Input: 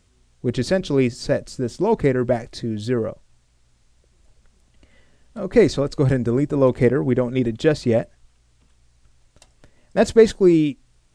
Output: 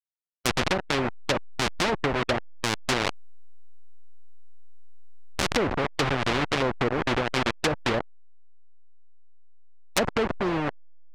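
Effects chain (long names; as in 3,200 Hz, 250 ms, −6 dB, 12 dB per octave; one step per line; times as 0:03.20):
hold until the input has moved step −17 dBFS
low-shelf EQ 450 Hz −8.5 dB
treble cut that deepens with the level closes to 780 Hz, closed at −18.5 dBFS
in parallel at −7 dB: soft clipping −22.5 dBFS, distortion −8 dB
on the sum: every bin compressed towards the loudest bin 2 to 1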